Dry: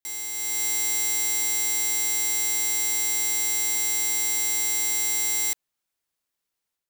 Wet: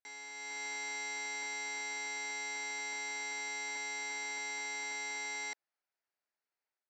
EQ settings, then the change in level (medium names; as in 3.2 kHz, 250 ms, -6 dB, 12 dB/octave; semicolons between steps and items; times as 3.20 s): cabinet simulation 490–4200 Hz, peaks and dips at 500 Hz -4 dB, 1.1 kHz -7 dB, 3.6 kHz -5 dB; peaking EQ 3.2 kHz -10.5 dB 0.95 oct; 0.0 dB